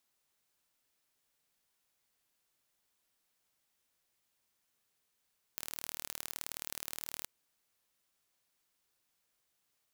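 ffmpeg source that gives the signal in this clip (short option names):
-f lavfi -i "aevalsrc='0.282*eq(mod(n,1148),0)*(0.5+0.5*eq(mod(n,2296),0))':d=1.69:s=44100"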